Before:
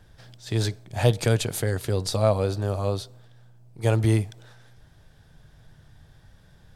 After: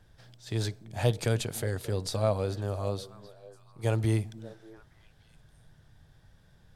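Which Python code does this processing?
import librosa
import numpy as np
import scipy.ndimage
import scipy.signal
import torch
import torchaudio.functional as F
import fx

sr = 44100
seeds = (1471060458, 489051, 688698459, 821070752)

y = fx.echo_stepped(x, sr, ms=292, hz=190.0, octaves=1.4, feedback_pct=70, wet_db=-12)
y = y * 10.0 ** (-6.0 / 20.0)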